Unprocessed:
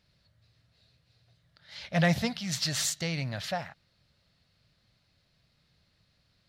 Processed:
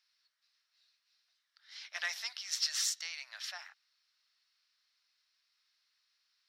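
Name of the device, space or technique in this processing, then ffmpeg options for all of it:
headphones lying on a table: -af "highpass=frequency=1100:width=0.5412,highpass=frequency=1100:width=1.3066,equalizer=frequency=5500:width_type=o:width=0.24:gain=10,volume=-6dB"

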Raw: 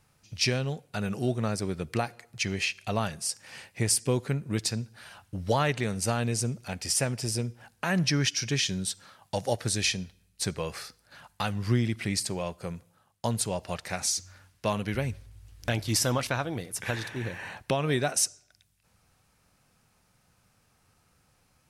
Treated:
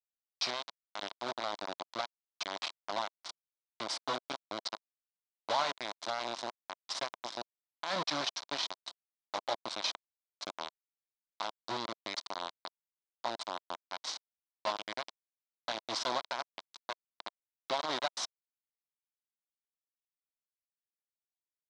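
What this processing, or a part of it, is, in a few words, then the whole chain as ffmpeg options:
hand-held game console: -af "acrusher=bits=3:mix=0:aa=0.000001,highpass=420,equalizer=frequency=450:width_type=q:width=4:gain=-9,equalizer=frequency=660:width_type=q:width=4:gain=4,equalizer=frequency=1000:width_type=q:width=4:gain=6,equalizer=frequency=1800:width_type=q:width=4:gain=-5,equalizer=frequency=2600:width_type=q:width=4:gain=-7,equalizer=frequency=3900:width_type=q:width=4:gain=6,lowpass=frequency=5200:width=0.5412,lowpass=frequency=5200:width=1.3066,volume=-6.5dB"

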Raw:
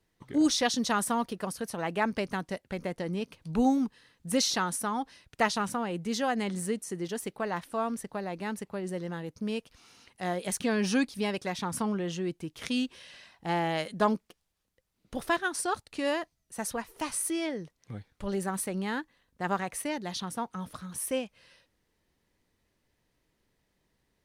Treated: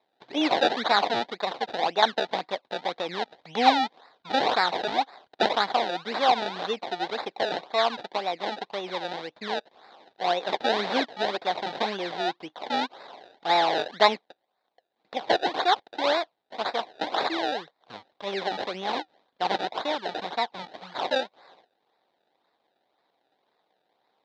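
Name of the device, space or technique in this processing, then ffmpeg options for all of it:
circuit-bent sampling toy: -af "acrusher=samples=28:mix=1:aa=0.000001:lfo=1:lforange=28:lforate=1.9,highpass=510,equalizer=frequency=760:width_type=q:width=4:gain=7,equalizer=frequency=1300:width_type=q:width=4:gain=-4,equalizer=frequency=2700:width_type=q:width=4:gain=-5,equalizer=frequency=3800:width_type=q:width=4:gain=9,lowpass=frequency=4400:width=0.5412,lowpass=frequency=4400:width=1.3066,volume=7dB"

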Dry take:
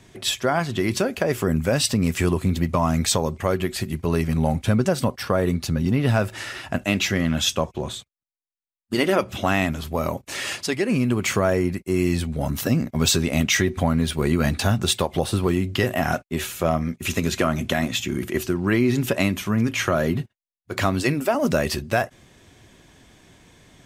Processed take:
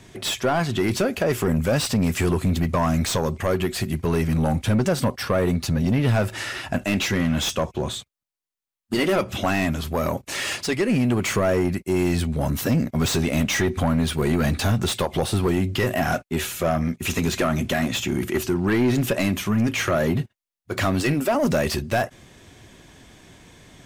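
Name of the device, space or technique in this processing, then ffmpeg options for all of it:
saturation between pre-emphasis and de-emphasis: -af "highshelf=frequency=3200:gain=12,asoftclip=type=tanh:threshold=-17.5dB,highshelf=frequency=3200:gain=-12,volume=3.5dB"

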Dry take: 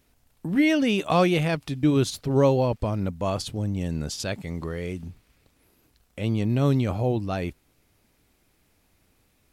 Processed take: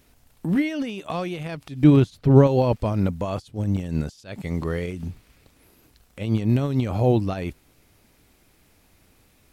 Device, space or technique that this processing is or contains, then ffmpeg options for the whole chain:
de-esser from a sidechain: -filter_complex "[0:a]asettb=1/sr,asplit=3[link_01][link_02][link_03];[link_01]atrim=end=1.844[link_04];[link_02]atrim=start=1.84:end=2.47,asetpts=PTS-STARTPTS,afade=type=in:duration=0.004:curve=qsin,afade=type=out:start_time=0.626:duration=0.004:curve=qsin,bass=frequency=250:gain=5,treble=frequency=4000:gain=-8[link_05];[link_03]atrim=start=2.466[link_06];[link_04][link_05]acrossfade=duration=0.004:curve1=hsin:curve2=qsin[link_07];[link_07][link_06]acrossfade=duration=0.004:curve1=qsin:curve2=hsin,asplit=2[link_08][link_09];[link_09]highpass=frequency=5700:width=0.5412,highpass=frequency=5700:width=1.3066,apad=whole_len=419871[link_10];[link_08][link_10]sidechaincompress=threshold=-57dB:ratio=10:attack=1.4:release=100,volume=6.5dB"

